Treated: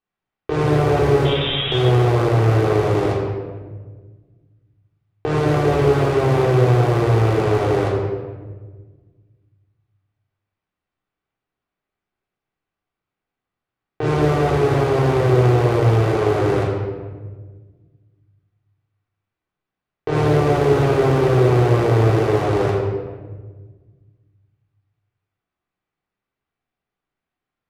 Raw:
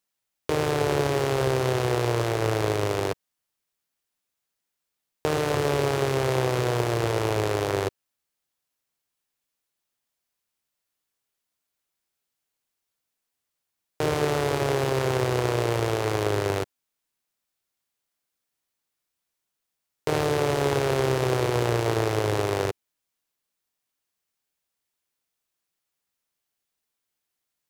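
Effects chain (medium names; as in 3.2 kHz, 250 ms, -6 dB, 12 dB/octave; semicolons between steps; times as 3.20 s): 1.25–1.72 s: frequency inversion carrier 3.7 kHz; treble shelf 2.4 kHz -9.5 dB; reverberation RT60 1.5 s, pre-delay 3 ms, DRR -6 dB; level-controlled noise filter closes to 2.9 kHz, open at -12.5 dBFS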